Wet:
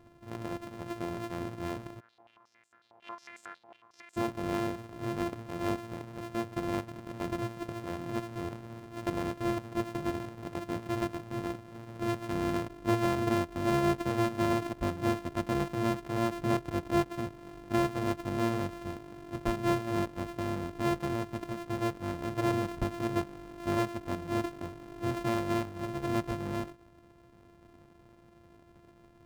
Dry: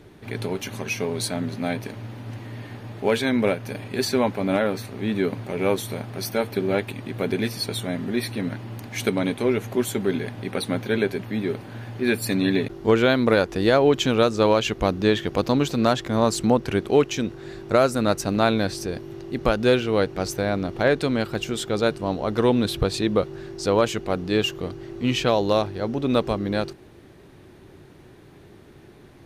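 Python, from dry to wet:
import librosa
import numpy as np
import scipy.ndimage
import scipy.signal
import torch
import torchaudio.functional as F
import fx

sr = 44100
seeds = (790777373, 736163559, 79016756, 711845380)

y = np.r_[np.sort(x[:len(x) // 128 * 128].reshape(-1, 128), axis=1).ravel(), x[len(x) // 128 * 128:]]
y = fx.high_shelf(y, sr, hz=2300.0, db=-11.5)
y = fx.filter_held_bandpass(y, sr, hz=11.0, low_hz=800.0, high_hz=7600.0, at=(1.99, 4.16), fade=0.02)
y = y * librosa.db_to_amplitude(-9.0)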